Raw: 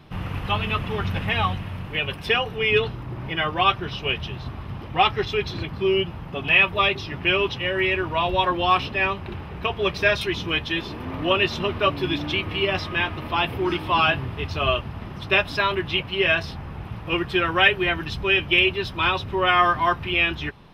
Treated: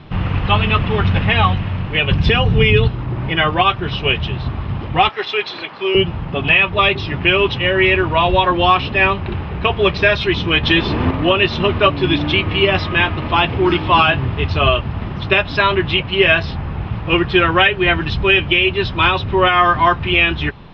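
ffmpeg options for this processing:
-filter_complex "[0:a]asettb=1/sr,asplit=3[s0][s1][s2];[s0]atrim=end=2.114[s3];[s1]atrim=start=2.11:end=2.88,asetpts=PTS-STARTPTS,afade=t=in:d=0.004:c=qsin,afade=t=out:st=0.766:d=0.004:c=qsin,bass=f=250:g=13,treble=f=4000:g=6[s4];[s2]atrim=start=2.876[s5];[s3][s4]acrossfade=d=0.004:c1=hsin:c2=qsin[s6];[s6][s5]acrossfade=d=0.004:c1=qsin:c2=hsin,asettb=1/sr,asplit=3[s7][s8][s9];[s7]atrim=end=5.094[s10];[s8]atrim=start=5.09:end=5.95,asetpts=PTS-STARTPTS,afade=t=in:d=0.004:c=qsin,afade=t=out:st=0.856:d=0.004:c=qsin,highpass=560[s11];[s9]atrim=start=5.946[s12];[s10][s11]acrossfade=d=0.004:c1=hsin:c2=qsin[s13];[s13][s12]acrossfade=d=0.004:c1=qsin:c2=hsin,asettb=1/sr,asplit=3[s14][s15][s16];[s14]atrim=end=10.634[s17];[s15]atrim=start=10.63:end=11.11,asetpts=PTS-STARTPTS,afade=t=in:d=0.004:c=qsin,afade=t=out:st=0.476:d=0.004:c=qsin,acontrast=53[s18];[s16]atrim=start=11.106[s19];[s17][s18]acrossfade=d=0.004:c1=hsin:c2=qsin[s20];[s20][s19]acrossfade=d=0.004:c1=qsin:c2=hsin,lowpass=f=4500:w=0.5412,lowpass=f=4500:w=1.3066,lowshelf=f=150:g=4,alimiter=limit=0.299:level=0:latency=1:release=237,volume=2.66"

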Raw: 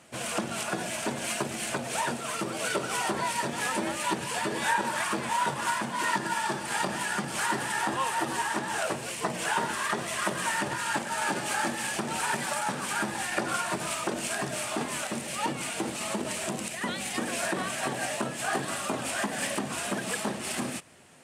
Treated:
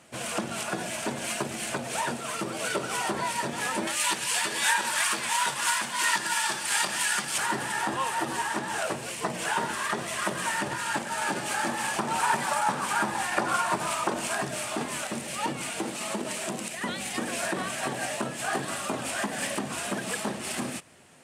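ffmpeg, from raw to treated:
-filter_complex "[0:a]asettb=1/sr,asplit=3[s0][s1][s2];[s0]atrim=end=3.874[s3];[s1]atrim=start=3.87:end=7.38,asetpts=PTS-STARTPTS,afade=t=in:d=0.004:c=qsin,afade=t=out:st=3.506:d=0.004:c=qsin,tiltshelf=f=1100:g=-9[s4];[s2]atrim=start=7.376[s5];[s3][s4]acrossfade=d=0.004:c1=hsin:c2=qsin[s6];[s6][s5]acrossfade=d=0.004:c1=qsin:c2=hsin,asettb=1/sr,asplit=3[s7][s8][s9];[s7]atrim=end=11.684[s10];[s8]atrim=start=11.68:end=14.42,asetpts=PTS-STARTPTS,afade=t=in:d=0.004:c=qsin,afade=t=out:st=2.736:d=0.004:c=qsin,equalizer=f=1000:w=1.5:g=7.5[s11];[s9]atrim=start=14.416[s12];[s10][s11]acrossfade=d=0.004:c1=hsin:c2=qsin[s13];[s13][s12]acrossfade=d=0.004:c1=qsin:c2=hsin,asettb=1/sr,asplit=3[s14][s15][s16];[s14]atrim=end=15.804[s17];[s15]atrim=start=15.8:end=16.79,asetpts=PTS-STARTPTS,afade=t=in:d=0.004:c=qsin,afade=t=out:st=0.986:d=0.004:c=qsin,highpass=140[s18];[s16]atrim=start=16.786[s19];[s17][s18]acrossfade=d=0.004:c1=hsin:c2=qsin[s20];[s20][s19]acrossfade=d=0.004:c1=qsin:c2=hsin"

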